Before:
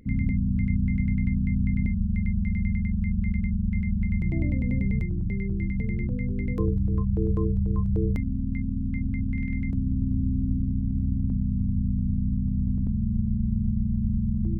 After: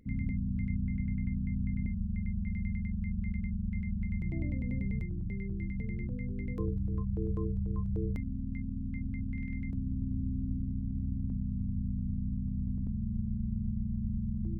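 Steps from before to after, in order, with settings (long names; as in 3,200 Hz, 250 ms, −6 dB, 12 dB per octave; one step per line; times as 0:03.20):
0:00.85–0:02.47: high-frequency loss of the air 230 metres
level −8.5 dB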